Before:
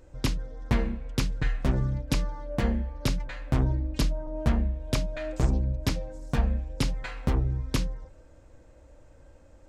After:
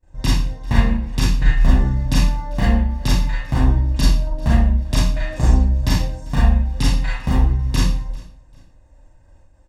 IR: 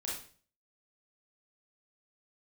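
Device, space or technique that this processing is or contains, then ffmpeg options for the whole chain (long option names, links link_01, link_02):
microphone above a desk: -filter_complex "[0:a]agate=range=-33dB:threshold=-44dB:ratio=3:detection=peak,aecho=1:1:1.1:0.57[link_01];[1:a]atrim=start_sample=2205[link_02];[link_01][link_02]afir=irnorm=-1:irlink=0,aecho=1:1:394|788:0.0668|0.018,volume=6.5dB"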